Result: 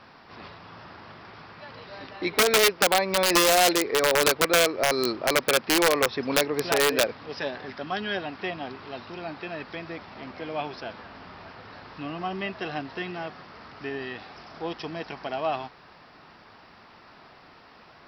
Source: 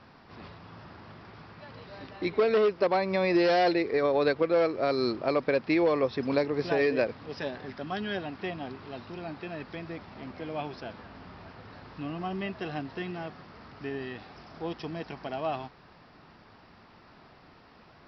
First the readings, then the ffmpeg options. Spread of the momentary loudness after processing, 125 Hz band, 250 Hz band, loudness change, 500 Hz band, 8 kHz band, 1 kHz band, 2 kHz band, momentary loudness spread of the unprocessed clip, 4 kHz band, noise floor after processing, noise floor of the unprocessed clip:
22 LU, -1.0 dB, -0.5 dB, +5.0 dB, +1.0 dB, no reading, +5.5 dB, +8.5 dB, 23 LU, +13.5 dB, -52 dBFS, -56 dBFS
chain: -af "aeval=exprs='0.224*(cos(1*acos(clip(val(0)/0.224,-1,1)))-cos(1*PI/2))+0.00316*(cos(5*acos(clip(val(0)/0.224,-1,1)))-cos(5*PI/2))':c=same,aeval=exprs='(mod(7.5*val(0)+1,2)-1)/7.5':c=same,lowshelf=f=360:g=-9,volume=1.88"

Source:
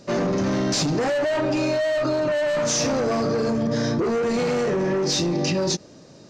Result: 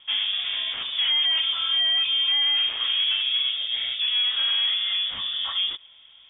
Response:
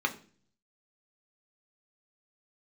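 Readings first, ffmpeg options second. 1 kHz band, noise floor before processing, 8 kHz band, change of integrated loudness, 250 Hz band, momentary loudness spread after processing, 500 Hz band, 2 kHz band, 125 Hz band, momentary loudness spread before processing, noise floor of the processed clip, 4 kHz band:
-12.0 dB, -47 dBFS, under -40 dB, +1.5 dB, under -35 dB, 7 LU, under -30 dB, -0.5 dB, under -30 dB, 2 LU, -52 dBFS, +13.0 dB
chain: -filter_complex "[0:a]acrossover=split=3000[s0][s1];[s1]acompressor=threshold=0.0141:ratio=4:attack=1:release=60[s2];[s0][s2]amix=inputs=2:normalize=0,lowshelf=f=310:t=q:w=1.5:g=-13,lowpass=f=3200:t=q:w=0.5098,lowpass=f=3200:t=q:w=0.6013,lowpass=f=3200:t=q:w=0.9,lowpass=f=3200:t=q:w=2.563,afreqshift=-3800,volume=0.794"

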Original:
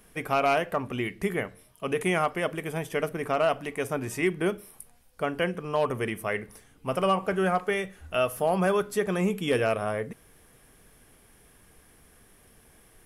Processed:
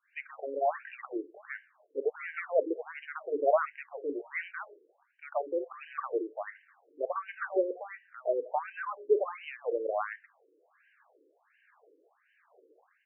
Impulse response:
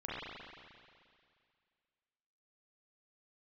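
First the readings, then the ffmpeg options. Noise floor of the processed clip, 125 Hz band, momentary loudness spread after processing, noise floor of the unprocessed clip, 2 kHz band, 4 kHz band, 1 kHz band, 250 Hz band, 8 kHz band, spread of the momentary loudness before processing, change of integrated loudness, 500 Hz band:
-72 dBFS, under -40 dB, 14 LU, -58 dBFS, -8.0 dB, under -20 dB, -6.5 dB, -11.5 dB, under -35 dB, 8 LU, -6.0 dB, -4.5 dB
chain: -filter_complex "[0:a]bandreject=f=50:t=h:w=6,bandreject=f=100:t=h:w=6,bandreject=f=150:t=h:w=6,bandreject=f=200:t=h:w=6,bandreject=f=250:t=h:w=6,bandreject=f=300:t=h:w=6,tremolo=f=1.2:d=0.53,lowpass=2900,acrossover=split=2000[s0][s1];[s0]adelay=130[s2];[s2][s1]amix=inputs=2:normalize=0,afftfilt=real='re*between(b*sr/1024,380*pow(2200/380,0.5+0.5*sin(2*PI*1.4*pts/sr))/1.41,380*pow(2200/380,0.5+0.5*sin(2*PI*1.4*pts/sr))*1.41)':imag='im*between(b*sr/1024,380*pow(2200/380,0.5+0.5*sin(2*PI*1.4*pts/sr))/1.41,380*pow(2200/380,0.5+0.5*sin(2*PI*1.4*pts/sr))*1.41)':win_size=1024:overlap=0.75,volume=1.68"

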